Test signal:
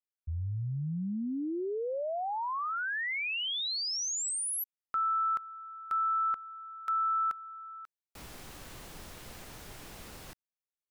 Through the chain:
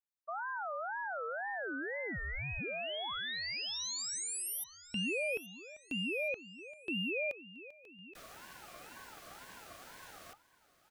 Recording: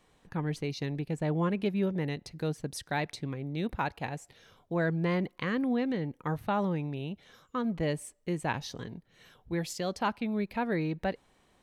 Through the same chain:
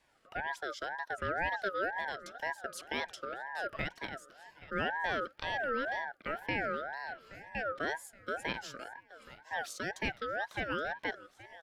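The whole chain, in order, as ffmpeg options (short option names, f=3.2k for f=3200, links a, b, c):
-af "afreqshift=180,aecho=1:1:823|1646|2469:0.133|0.0547|0.0224,aeval=exprs='val(0)*sin(2*PI*1100*n/s+1100*0.2/2*sin(2*PI*2*n/s))':c=same,volume=-2.5dB"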